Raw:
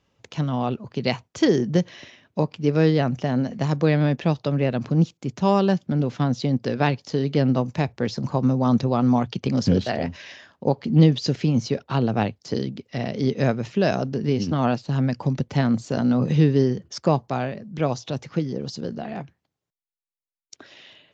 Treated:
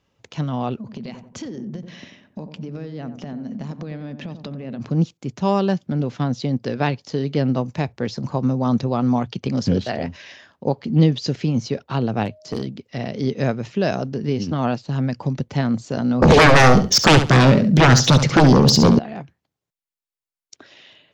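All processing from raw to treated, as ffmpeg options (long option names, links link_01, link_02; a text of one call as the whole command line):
ffmpeg -i in.wav -filter_complex "[0:a]asettb=1/sr,asplit=3[link_01][link_02][link_03];[link_01]atrim=end=0.784[link_04];[link_02]atrim=start=0.78:end=4.8,asetpts=PTS-STARTPTS,afade=type=in:duration=0.004:curve=qsin,afade=type=out:start_time=4.016:duration=0.004:curve=qsin,equalizer=frequency=220:width=2.7:gain=12.5,acompressor=threshold=-28dB:ratio=20:attack=3.2:release=140:knee=1:detection=peak,asplit=2[link_05][link_06];[link_06]adelay=90,lowpass=frequency=810:poles=1,volume=-7.5dB,asplit=2[link_07][link_08];[link_08]adelay=90,lowpass=frequency=810:poles=1,volume=0.48,asplit=2[link_09][link_10];[link_10]adelay=90,lowpass=frequency=810:poles=1,volume=0.48,asplit=2[link_11][link_12];[link_12]adelay=90,lowpass=frequency=810:poles=1,volume=0.48,asplit=2[link_13][link_14];[link_14]adelay=90,lowpass=frequency=810:poles=1,volume=0.48,asplit=2[link_15][link_16];[link_16]adelay=90,lowpass=frequency=810:poles=1,volume=0.48[link_17];[link_05][link_07][link_09][link_11][link_13][link_15][link_17]amix=inputs=7:normalize=0,atrim=end_sample=177282[link_18];[link_03]atrim=start=4.796[link_19];[link_04][link_18]acrossfade=duration=0.004:curve1=hsin:curve2=qsin[link_20];[link_20][link_19]acrossfade=duration=0.004:curve1=qsin:curve2=hsin,asettb=1/sr,asplit=3[link_21][link_22][link_23];[link_21]atrim=end=12.254[link_24];[link_22]atrim=start=12.25:end=12.67,asetpts=PTS-STARTPTS,afade=type=in:duration=0.004:curve=qsin,afade=type=out:start_time=0.416:duration=0.004:curve=qsin,aeval=exprs='val(0)+0.00447*sin(2*PI*620*n/s)':channel_layout=same,asoftclip=type=hard:threshold=-18dB[link_25];[link_23]atrim=start=12.666[link_26];[link_24][link_25]acrossfade=duration=0.004:curve1=hsin:curve2=qsin[link_27];[link_27][link_26]acrossfade=duration=0.004:curve1=qsin:curve2=hsin,asettb=1/sr,asplit=3[link_28][link_29][link_30];[link_28]atrim=end=16.224[link_31];[link_29]atrim=start=16.22:end=18.99,asetpts=PTS-STARTPTS,afade=type=in:duration=0.004:curve=qsin,afade=type=out:start_time=2.766:duration=0.004:curve=qsin,equalizer=frequency=1100:width=0.73:gain=-7,aeval=exprs='0.422*sin(PI/2*7.94*val(0)/0.422)':channel_layout=same,aecho=1:1:69|138|207:0.335|0.0603|0.0109,atrim=end_sample=122157[link_32];[link_30]atrim=start=18.986[link_33];[link_31][link_32]acrossfade=duration=0.004:curve1=hsin:curve2=qsin[link_34];[link_34][link_33]acrossfade=duration=0.004:curve1=qsin:curve2=hsin" out.wav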